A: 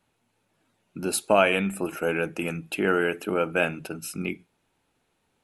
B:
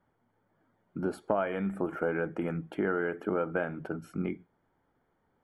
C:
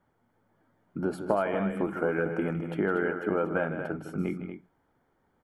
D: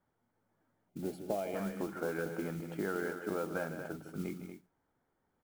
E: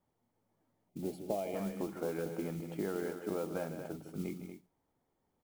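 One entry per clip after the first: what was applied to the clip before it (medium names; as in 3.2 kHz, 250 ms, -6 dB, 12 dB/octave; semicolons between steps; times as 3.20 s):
compression 4:1, threshold -26 dBFS, peak gain reduction 10.5 dB; Savitzky-Golay filter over 41 samples
loudspeakers at several distances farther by 54 m -10 dB, 81 m -9 dB; trim +2 dB
time-frequency box 0.89–1.55 s, 860–2000 Hz -13 dB; modulation noise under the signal 19 dB; trim -8.5 dB
peaking EQ 1.5 kHz -10 dB 0.51 oct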